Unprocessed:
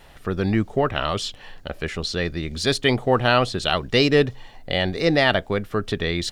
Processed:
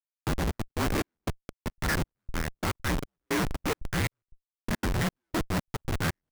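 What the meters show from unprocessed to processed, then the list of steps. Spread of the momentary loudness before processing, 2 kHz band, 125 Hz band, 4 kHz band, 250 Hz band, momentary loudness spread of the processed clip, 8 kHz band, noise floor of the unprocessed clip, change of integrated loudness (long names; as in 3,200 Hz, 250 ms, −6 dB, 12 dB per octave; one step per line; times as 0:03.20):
10 LU, −9.0 dB, −6.0 dB, −14.5 dB, −8.5 dB, 7 LU, −2.0 dB, −46 dBFS, −10.0 dB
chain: lower of the sound and its delayed copy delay 0.4 ms
high-pass filter 190 Hz 12 dB per octave
downward compressor 6 to 1, threshold −21 dBFS, peak gain reduction 8.5 dB
single-sideband voice off tune −320 Hz 450–2,300 Hz
comparator with hysteresis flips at −39 dBFS
downward expander −57 dBFS
brickwall limiter −30.5 dBFS, peak gain reduction 3.5 dB
gate pattern "...xxx.x.xxx" 177 BPM −60 dB
level +7 dB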